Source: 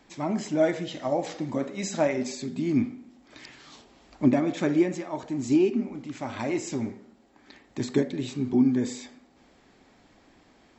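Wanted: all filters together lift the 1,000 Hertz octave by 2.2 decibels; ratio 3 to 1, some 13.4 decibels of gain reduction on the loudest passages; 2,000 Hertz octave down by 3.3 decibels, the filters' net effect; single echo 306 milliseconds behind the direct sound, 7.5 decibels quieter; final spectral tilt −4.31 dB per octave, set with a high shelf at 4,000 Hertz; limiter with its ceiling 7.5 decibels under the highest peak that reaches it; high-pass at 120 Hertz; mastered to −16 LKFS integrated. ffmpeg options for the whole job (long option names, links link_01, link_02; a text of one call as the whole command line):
ffmpeg -i in.wav -af "highpass=120,equalizer=frequency=1000:width_type=o:gain=4,equalizer=frequency=2000:width_type=o:gain=-7,highshelf=frequency=4000:gain=7.5,acompressor=threshold=-35dB:ratio=3,alimiter=level_in=5dB:limit=-24dB:level=0:latency=1,volume=-5dB,aecho=1:1:306:0.422,volume=22.5dB" out.wav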